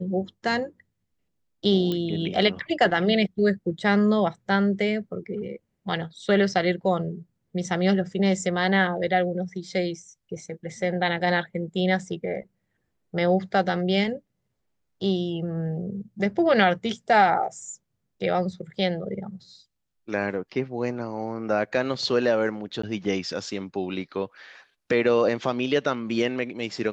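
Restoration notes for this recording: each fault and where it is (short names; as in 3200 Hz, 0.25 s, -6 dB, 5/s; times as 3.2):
1.92 pop -16 dBFS
22.82–22.83 gap 14 ms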